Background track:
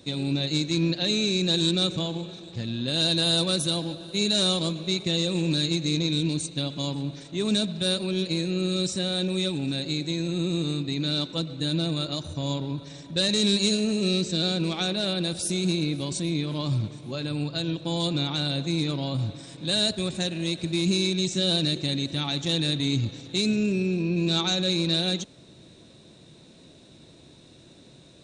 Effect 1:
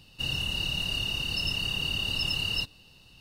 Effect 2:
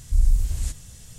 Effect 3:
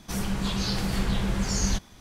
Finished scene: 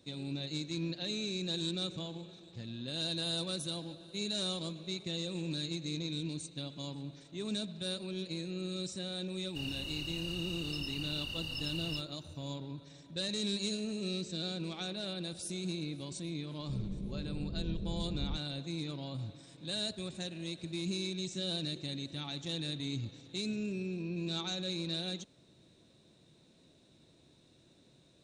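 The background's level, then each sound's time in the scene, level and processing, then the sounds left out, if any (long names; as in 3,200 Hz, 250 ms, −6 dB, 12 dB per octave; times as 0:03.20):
background track −12.5 dB
0:09.36: mix in 1 −11 dB
0:16.59: mix in 3 −11.5 dB + Butterworth low-pass 530 Hz
not used: 2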